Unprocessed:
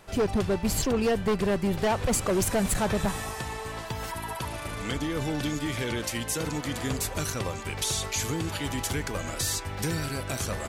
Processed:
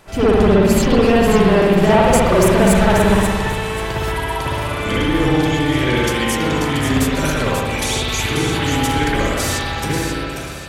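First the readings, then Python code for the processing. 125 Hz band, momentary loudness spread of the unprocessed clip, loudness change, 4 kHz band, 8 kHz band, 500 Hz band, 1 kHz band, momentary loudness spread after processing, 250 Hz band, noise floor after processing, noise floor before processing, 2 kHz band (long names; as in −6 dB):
+12.5 dB, 9 LU, +12.5 dB, +11.0 dB, +5.5 dB, +14.0 dB, +14.0 dB, 9 LU, +13.5 dB, −25 dBFS, −37 dBFS, +14.0 dB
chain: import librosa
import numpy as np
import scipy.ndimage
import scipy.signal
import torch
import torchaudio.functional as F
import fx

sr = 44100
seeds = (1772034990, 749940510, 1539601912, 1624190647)

y = fx.fade_out_tail(x, sr, length_s=1.04)
y = fx.echo_wet_highpass(y, sr, ms=537, feedback_pct=33, hz=2600.0, wet_db=-6.0)
y = fx.rev_spring(y, sr, rt60_s=1.7, pass_ms=(57,), chirp_ms=75, drr_db=-9.0)
y = y * librosa.db_to_amplitude(4.5)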